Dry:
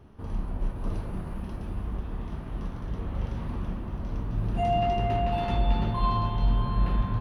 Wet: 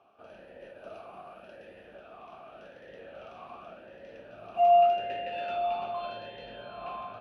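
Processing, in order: tilt +2.5 dB/oct; vowel sweep a-e 0.86 Hz; gain +8.5 dB

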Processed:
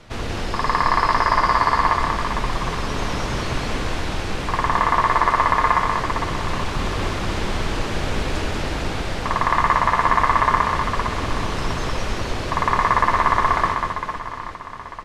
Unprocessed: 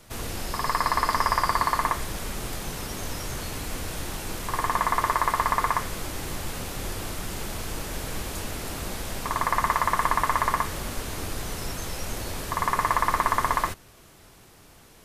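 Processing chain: in parallel at -2 dB: vocal rider 2 s; on the sum: LPF 4100 Hz 12 dB/oct; reverse bouncing-ball echo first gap 0.19 s, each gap 1.4×, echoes 5

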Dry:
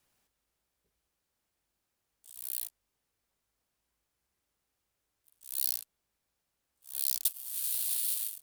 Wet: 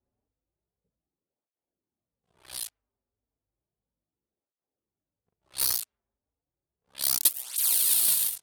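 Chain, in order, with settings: sample leveller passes 2; low-pass opened by the level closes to 530 Hz, open at -25 dBFS; tape flanging out of phase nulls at 0.33 Hz, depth 6.7 ms; gain +7 dB

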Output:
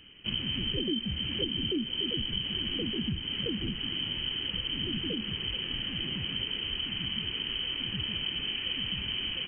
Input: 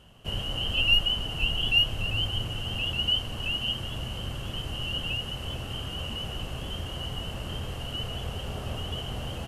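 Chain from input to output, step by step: compressor 6:1, threshold -29 dBFS, peak gain reduction 12 dB; inverted band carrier 3100 Hz

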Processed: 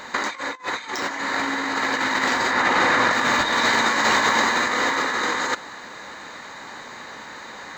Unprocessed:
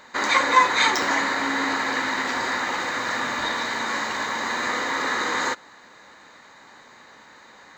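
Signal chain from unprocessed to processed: 2.51–3.13 high shelf 4400 Hz -9 dB; negative-ratio compressor -28 dBFS, ratio -0.5; gain +6.5 dB

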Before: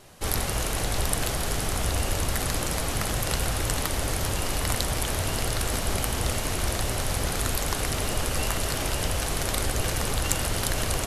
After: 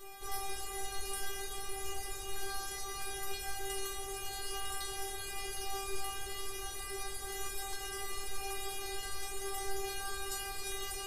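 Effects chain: upward compressor, threshold -29 dBFS; whine 12000 Hz -45 dBFS; metallic resonator 390 Hz, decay 0.73 s, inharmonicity 0.002; gain +7.5 dB

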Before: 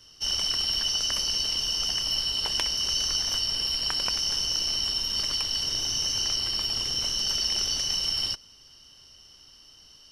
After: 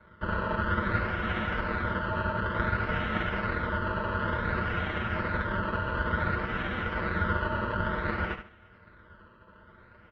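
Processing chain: spectral whitening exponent 0.3; decimation with a swept rate 21×, swing 100% 0.56 Hz; speaker cabinet 140–3100 Hz, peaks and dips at 270 Hz -5 dB, 440 Hz -6 dB, 650 Hz +9 dB, 1000 Hz -3 dB, 1700 Hz -9 dB, 2800 Hz -5 dB; comb 7.3 ms, depth 82%; feedback echo 74 ms, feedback 25%, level -9 dB; ring modulator 760 Hz; air absorption 200 m

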